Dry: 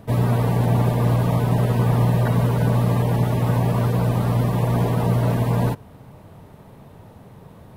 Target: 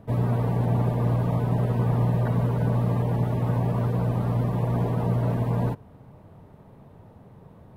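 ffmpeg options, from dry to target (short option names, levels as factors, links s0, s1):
-af "highshelf=f=2200:g=-10.5,volume=0.596"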